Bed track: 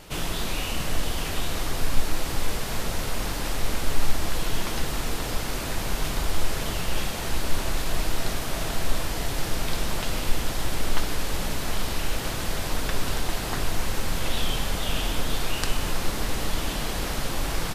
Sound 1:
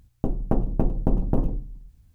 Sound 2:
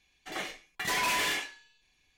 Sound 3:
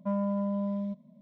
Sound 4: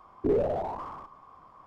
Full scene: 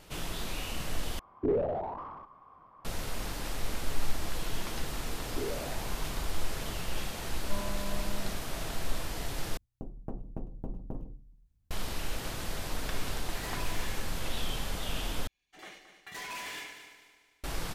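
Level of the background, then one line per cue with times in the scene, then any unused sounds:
bed track -8 dB
1.19 s: replace with 4 -3 dB + low-pass 3 kHz
5.12 s: add 4 -12 dB
7.44 s: add 3 -8.5 dB + tilt shelf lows -7 dB, about 640 Hz
9.57 s: replace with 1 -17 dB
12.56 s: add 2 -5 dB + compression, threshold -38 dBFS
15.27 s: replace with 2 -12 dB + multi-head delay 74 ms, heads first and third, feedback 54%, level -11 dB

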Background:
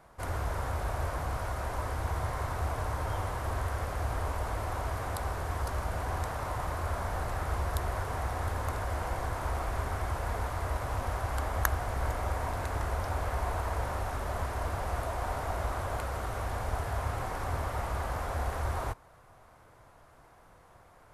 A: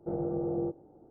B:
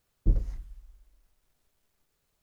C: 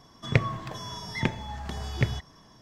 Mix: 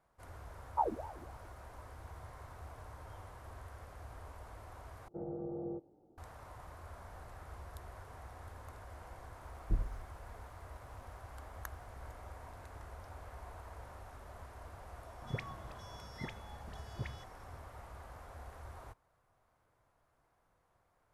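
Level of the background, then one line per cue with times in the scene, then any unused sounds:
background -17.5 dB
0.51 s: add B -8 dB + ring modulator with a swept carrier 590 Hz, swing 55%, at 3.6 Hz
5.08 s: replace with A -9.5 dB
9.44 s: add B -9 dB
14.98 s: add C -16.5 dB + phase dispersion highs, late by 66 ms, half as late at 1 kHz

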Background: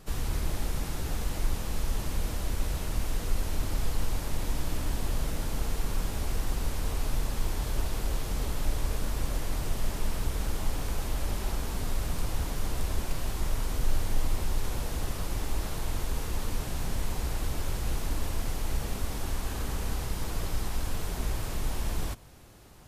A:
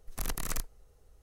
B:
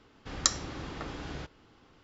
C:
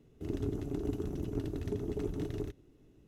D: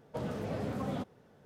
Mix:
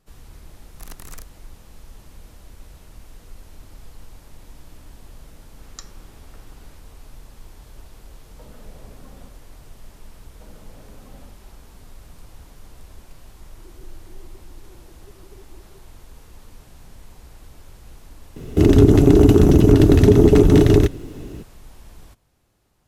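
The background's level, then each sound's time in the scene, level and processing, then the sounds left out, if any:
background -13 dB
0.62 s: add A -5 dB
5.33 s: add B -14 dB
8.25 s: add D -2 dB + compression, threshold -43 dBFS
10.26 s: add D -13.5 dB
13.35 s: add C -17 dB + formants replaced by sine waves
18.36 s: add C -1 dB + loudness maximiser +27.5 dB

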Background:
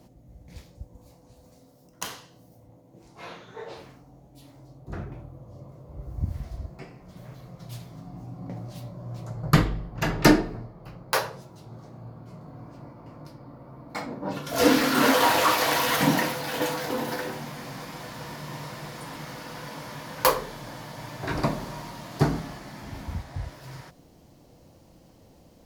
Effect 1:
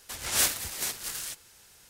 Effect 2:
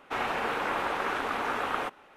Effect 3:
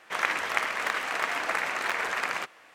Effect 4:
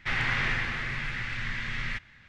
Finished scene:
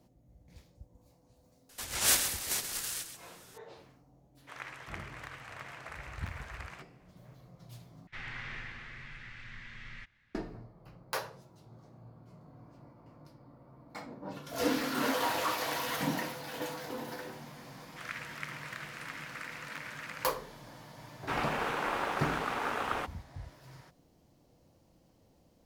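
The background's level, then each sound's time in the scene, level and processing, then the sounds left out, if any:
background -11 dB
1.69 s: add 1 -1.5 dB + delay 132 ms -9 dB
4.37 s: add 3 -17.5 dB
8.07 s: replace with 4 -14.5 dB
17.86 s: add 3 -13.5 dB + steep high-pass 1.2 kHz
21.17 s: add 2 -2 dB + crossover distortion -44.5 dBFS

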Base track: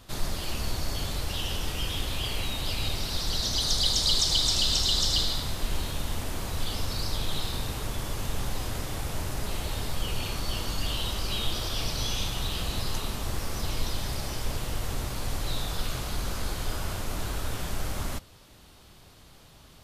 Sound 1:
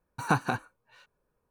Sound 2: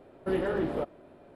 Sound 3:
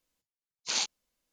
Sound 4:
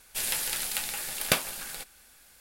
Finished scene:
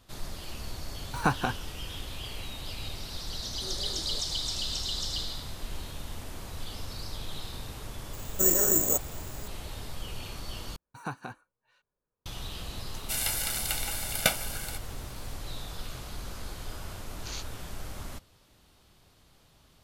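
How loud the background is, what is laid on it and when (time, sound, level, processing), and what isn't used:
base track -8 dB
0.95 s: add 1 -0.5 dB
3.34 s: add 2 -17 dB + phase dispersion highs, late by 122 ms, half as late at 1.2 kHz
8.13 s: add 2 -2.5 dB + careless resampling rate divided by 6×, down filtered, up zero stuff
10.76 s: replace with 1 -11.5 dB
12.94 s: add 4 -3 dB + comb 1.4 ms, depth 88%
16.57 s: add 3 -11 dB

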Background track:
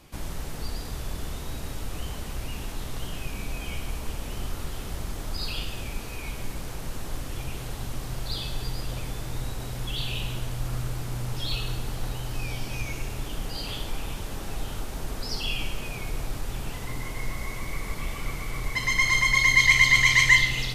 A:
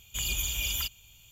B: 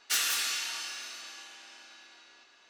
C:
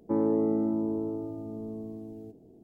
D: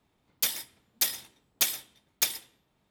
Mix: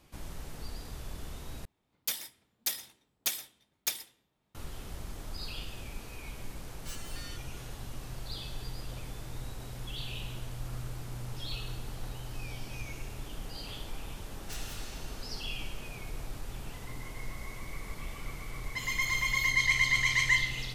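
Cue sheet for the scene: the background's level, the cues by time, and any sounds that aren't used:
background track -8.5 dB
1.65 s: replace with D -6 dB
6.75 s: add B -4 dB + resonator arpeggio 4.9 Hz 170–570 Hz
14.39 s: add B -16.5 dB
18.63 s: add A -14.5 dB
not used: C

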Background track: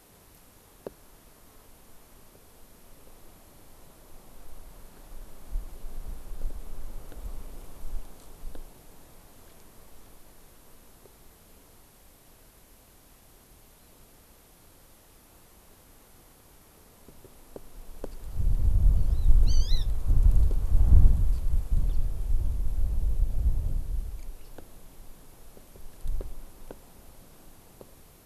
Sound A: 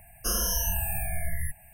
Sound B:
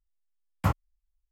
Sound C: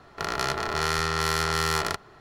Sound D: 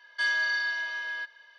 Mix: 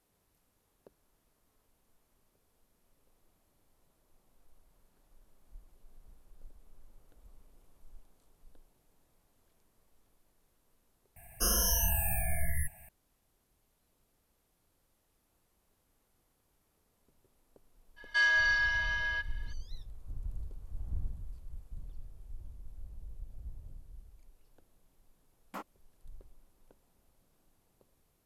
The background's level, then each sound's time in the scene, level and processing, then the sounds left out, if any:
background track -19.5 dB
11.16 s: add A -1.5 dB
17.96 s: add D -1 dB, fades 0.02 s + comb 6.5 ms, depth 59%
24.90 s: add B -12.5 dB + brick-wall FIR high-pass 190 Hz
not used: C

